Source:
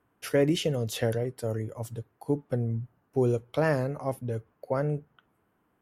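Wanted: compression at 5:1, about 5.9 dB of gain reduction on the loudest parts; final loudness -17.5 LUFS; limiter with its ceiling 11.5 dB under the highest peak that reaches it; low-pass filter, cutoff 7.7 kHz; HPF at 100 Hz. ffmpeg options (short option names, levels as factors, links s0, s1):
-af "highpass=100,lowpass=7700,acompressor=threshold=0.0501:ratio=5,volume=11.2,alimiter=limit=0.473:level=0:latency=1"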